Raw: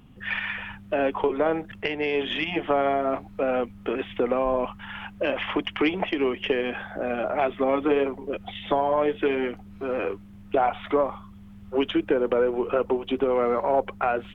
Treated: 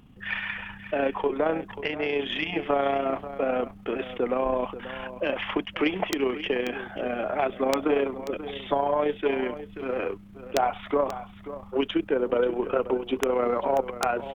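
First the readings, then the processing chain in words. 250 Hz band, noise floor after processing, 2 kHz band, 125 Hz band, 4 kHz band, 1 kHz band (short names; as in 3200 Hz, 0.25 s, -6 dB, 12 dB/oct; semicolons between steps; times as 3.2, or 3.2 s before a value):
-2.0 dB, -47 dBFS, -1.5 dB, -2.0 dB, n/a, -1.5 dB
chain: AM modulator 30 Hz, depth 25%; wrapped overs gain 11 dB; on a send: echo 0.536 s -13.5 dB; on the sum: attack slew limiter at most 580 dB/s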